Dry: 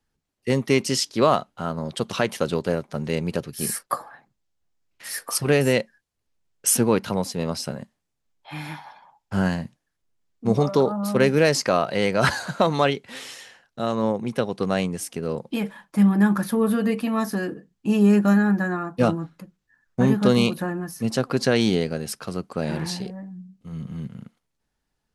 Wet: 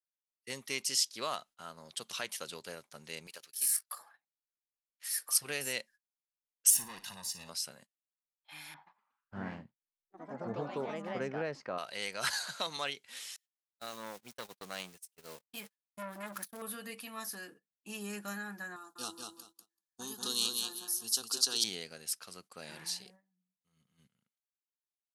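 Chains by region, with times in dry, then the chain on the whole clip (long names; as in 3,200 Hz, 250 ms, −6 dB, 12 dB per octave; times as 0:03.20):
0:03.27–0:03.99: high-pass filter 950 Hz 6 dB per octave + output level in coarse steps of 10 dB + leveller curve on the samples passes 1
0:06.70–0:07.49: tube saturation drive 22 dB, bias 0.2 + comb filter 1.1 ms, depth 69% + flutter between parallel walls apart 9.7 metres, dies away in 0.26 s
0:08.74–0:11.78: low-pass filter 1,300 Hz + low-shelf EQ 490 Hz +8 dB + delay with pitch and tempo change per echo 121 ms, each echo +3 semitones, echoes 3, each echo −6 dB
0:12.33–0:12.77: parametric band 4,200 Hz +5 dB 0.85 octaves + multiband upward and downward compressor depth 40%
0:13.36–0:16.62: converter with a step at zero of −31.5 dBFS + noise gate −26 dBFS, range −47 dB + saturating transformer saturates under 760 Hz
0:18.76–0:21.64: high shelf with overshoot 2,600 Hz +8 dB, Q 1.5 + phaser with its sweep stopped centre 580 Hz, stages 6 + repeating echo 192 ms, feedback 23%, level −4.5 dB
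whole clip: first-order pre-emphasis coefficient 0.97; noise gate −56 dBFS, range −17 dB; high-shelf EQ 5,700 Hz −5 dB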